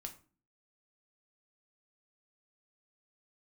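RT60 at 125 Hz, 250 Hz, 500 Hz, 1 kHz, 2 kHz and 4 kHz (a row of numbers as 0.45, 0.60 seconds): 0.60, 0.60, 0.40, 0.35, 0.30, 0.25 seconds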